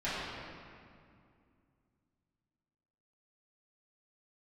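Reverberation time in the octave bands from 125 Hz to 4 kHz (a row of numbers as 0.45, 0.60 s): 3.3, 3.2, 2.4, 2.2, 2.0, 1.5 s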